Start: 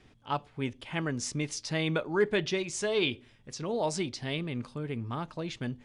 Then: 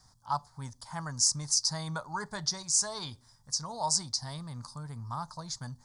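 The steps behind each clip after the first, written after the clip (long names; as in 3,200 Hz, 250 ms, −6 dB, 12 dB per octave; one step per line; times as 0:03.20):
drawn EQ curve 150 Hz 0 dB, 380 Hz −20 dB, 960 Hz +8 dB, 1,800 Hz −6 dB, 2,700 Hz −25 dB, 4,700 Hz +14 dB
level −2.5 dB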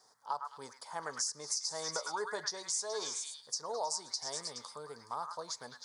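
high-pass with resonance 440 Hz, resonance Q 4.9
echo through a band-pass that steps 105 ms, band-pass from 1,600 Hz, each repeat 0.7 octaves, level −1.5 dB
downward compressor 6 to 1, threshold −30 dBFS, peak gain reduction 9.5 dB
level −2.5 dB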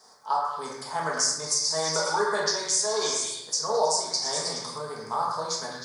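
rectangular room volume 300 cubic metres, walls mixed, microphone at 1.5 metres
level +7.5 dB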